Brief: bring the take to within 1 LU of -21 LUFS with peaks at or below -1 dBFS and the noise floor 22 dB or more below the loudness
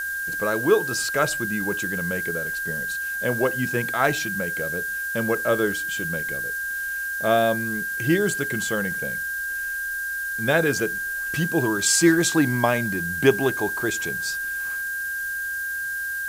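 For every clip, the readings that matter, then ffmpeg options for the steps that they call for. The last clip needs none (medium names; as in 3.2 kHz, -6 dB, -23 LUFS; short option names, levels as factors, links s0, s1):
steady tone 1.6 kHz; tone level -26 dBFS; noise floor -29 dBFS; noise floor target -46 dBFS; loudness -23.5 LUFS; peak level -4.5 dBFS; loudness target -21.0 LUFS
-> -af "bandreject=f=1600:w=30"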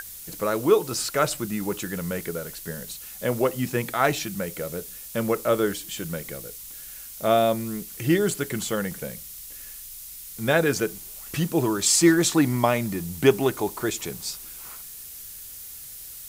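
steady tone not found; noise floor -41 dBFS; noise floor target -47 dBFS
-> -af "afftdn=nr=6:nf=-41"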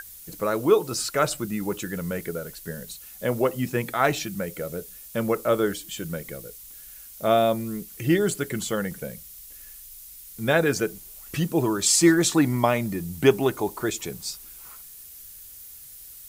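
noise floor -45 dBFS; noise floor target -47 dBFS
-> -af "afftdn=nr=6:nf=-45"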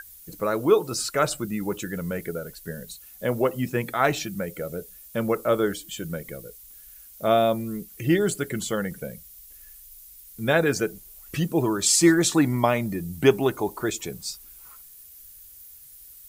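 noise floor -48 dBFS; loudness -24.5 LUFS; peak level -5.5 dBFS; loudness target -21.0 LUFS
-> -af "volume=1.5"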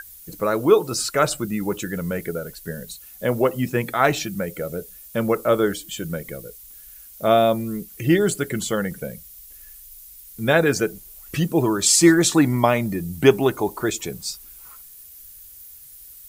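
loudness -21.0 LUFS; peak level -2.0 dBFS; noise floor -44 dBFS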